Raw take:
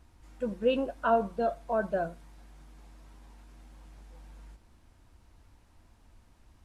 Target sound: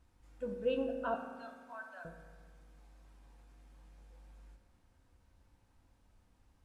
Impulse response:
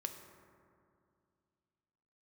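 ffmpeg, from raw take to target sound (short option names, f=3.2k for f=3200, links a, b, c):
-filter_complex "[0:a]asettb=1/sr,asplit=3[a][b][c];[a]atrim=end=1.144[d];[b]atrim=start=1.14:end=2.05,asetpts=PTS-STARTPTS,afade=t=in:d=0.004:c=qsin,afade=t=out:st=0.906:d=0.004:c=qsin,highpass=f=1k:w=0.5412,highpass=f=1k:w=1.3066[e];[c]atrim=start=2.046[f];[d][e]acrossfade=d=0.004:c1=hsin:c2=qsin[g];[g][f]acrossfade=d=0.004:c1=qsin:c2=hsin[h];[1:a]atrim=start_sample=2205,asetrate=61740,aresample=44100[i];[h][i]afir=irnorm=-1:irlink=0,volume=-4dB"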